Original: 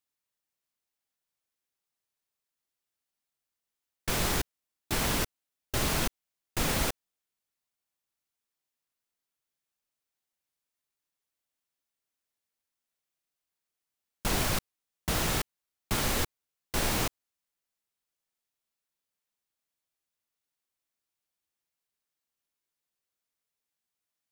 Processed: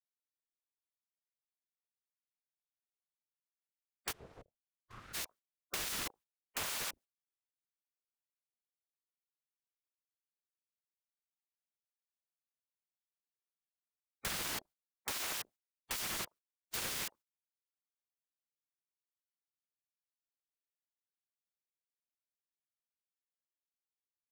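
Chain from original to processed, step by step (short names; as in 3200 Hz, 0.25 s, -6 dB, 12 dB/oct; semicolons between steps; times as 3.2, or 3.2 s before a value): octaver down 1 oct, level -2 dB; spectral gate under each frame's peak -15 dB weak; compressor 3:1, threshold -38 dBFS, peak gain reduction 8 dB; 4.11–5.13 band-pass 220 Hz -> 650 Hz, Q 2.4; ring modulator with a swept carrier 530 Hz, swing 70%, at 0.36 Hz; gain +3 dB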